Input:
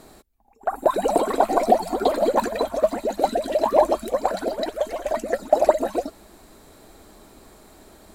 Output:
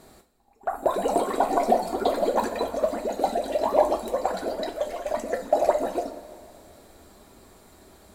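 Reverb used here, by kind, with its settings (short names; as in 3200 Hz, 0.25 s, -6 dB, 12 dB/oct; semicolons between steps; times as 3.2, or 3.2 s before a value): two-slope reverb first 0.28 s, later 2.5 s, from -18 dB, DRR 4 dB; gain -4.5 dB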